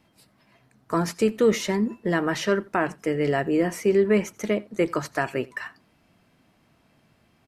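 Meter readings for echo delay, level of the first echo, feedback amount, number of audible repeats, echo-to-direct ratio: 87 ms, -23.5 dB, no regular repeats, 1, -23.5 dB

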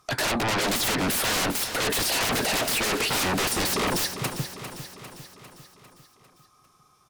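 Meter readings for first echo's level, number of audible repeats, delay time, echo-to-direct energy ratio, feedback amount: -10.5 dB, 5, 400 ms, -9.0 dB, 56%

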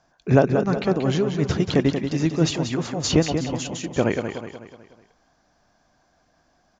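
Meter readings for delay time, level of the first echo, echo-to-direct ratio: 184 ms, -7.5 dB, -6.5 dB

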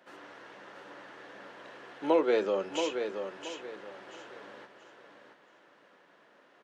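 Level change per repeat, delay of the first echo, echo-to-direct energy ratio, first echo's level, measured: -11.0 dB, 677 ms, -6.5 dB, -7.0 dB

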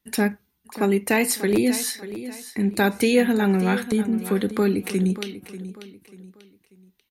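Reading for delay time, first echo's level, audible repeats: 590 ms, -13.5 dB, 3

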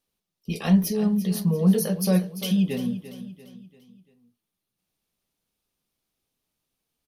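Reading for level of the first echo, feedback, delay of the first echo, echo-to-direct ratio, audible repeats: -13.0 dB, 45%, 343 ms, -12.0 dB, 4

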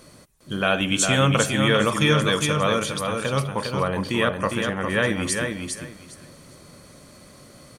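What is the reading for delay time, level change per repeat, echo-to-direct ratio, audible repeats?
405 ms, -14.0 dB, -5.0 dB, 3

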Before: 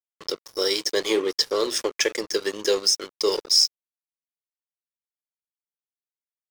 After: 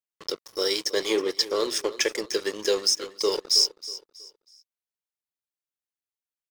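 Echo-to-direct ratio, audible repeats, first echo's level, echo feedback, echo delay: -15.5 dB, 2, -16.0 dB, 32%, 321 ms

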